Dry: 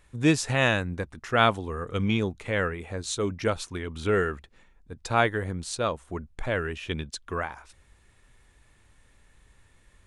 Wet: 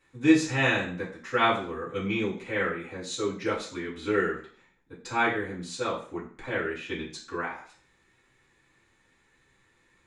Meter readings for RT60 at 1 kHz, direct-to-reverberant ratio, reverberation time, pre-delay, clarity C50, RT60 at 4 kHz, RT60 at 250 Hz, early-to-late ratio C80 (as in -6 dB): 0.50 s, -9.5 dB, 0.50 s, 3 ms, 7.5 dB, 0.45 s, 0.45 s, 11.5 dB